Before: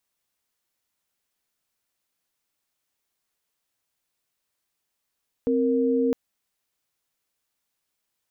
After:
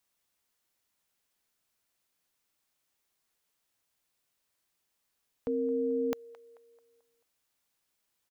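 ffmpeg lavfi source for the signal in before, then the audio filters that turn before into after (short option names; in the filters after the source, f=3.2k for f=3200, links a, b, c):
-f lavfi -i "aevalsrc='0.0794*(sin(2*PI*261.63*t)+sin(2*PI*466.16*t))':d=0.66:s=44100"
-filter_complex "[0:a]acrossover=split=660[a][b];[a]alimiter=level_in=3.5dB:limit=-24dB:level=0:latency=1,volume=-3.5dB[c];[b]asplit=2[d][e];[e]adelay=219,lowpass=f=1.5k:p=1,volume=-14dB,asplit=2[f][g];[g]adelay=219,lowpass=f=1.5k:p=1,volume=0.53,asplit=2[h][i];[i]adelay=219,lowpass=f=1.5k:p=1,volume=0.53,asplit=2[j][k];[k]adelay=219,lowpass=f=1.5k:p=1,volume=0.53,asplit=2[l][m];[m]adelay=219,lowpass=f=1.5k:p=1,volume=0.53[n];[d][f][h][j][l][n]amix=inputs=6:normalize=0[o];[c][o]amix=inputs=2:normalize=0"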